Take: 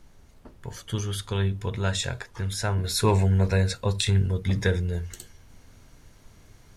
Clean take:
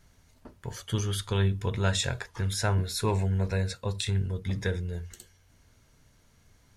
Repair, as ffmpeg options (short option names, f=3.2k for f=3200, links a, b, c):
-af "agate=range=-21dB:threshold=-44dB,asetnsamples=n=441:p=0,asendcmd='2.84 volume volume -6dB',volume=0dB"